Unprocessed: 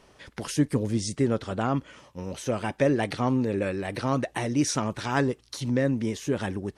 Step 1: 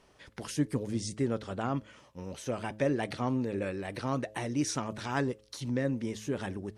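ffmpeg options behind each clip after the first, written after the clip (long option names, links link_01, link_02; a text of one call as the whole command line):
ffmpeg -i in.wav -af "bandreject=frequency=106.9:width_type=h:width=4,bandreject=frequency=213.8:width_type=h:width=4,bandreject=frequency=320.7:width_type=h:width=4,bandreject=frequency=427.6:width_type=h:width=4,bandreject=frequency=534.5:width_type=h:width=4,bandreject=frequency=641.4:width_type=h:width=4,volume=-6dB" out.wav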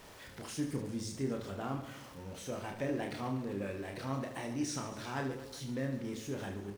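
ffmpeg -i in.wav -af "aeval=exprs='val(0)+0.5*0.00794*sgn(val(0))':channel_layout=same,aecho=1:1:30|75|142.5|243.8|395.6:0.631|0.398|0.251|0.158|0.1,volume=-8.5dB" out.wav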